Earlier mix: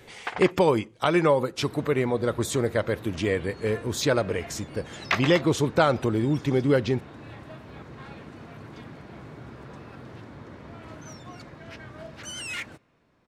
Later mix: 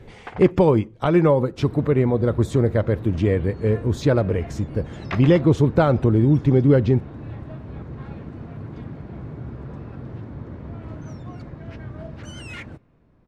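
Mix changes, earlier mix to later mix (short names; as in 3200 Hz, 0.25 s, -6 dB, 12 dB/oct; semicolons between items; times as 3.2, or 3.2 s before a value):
first sound -4.0 dB; master: add tilt -3.5 dB/oct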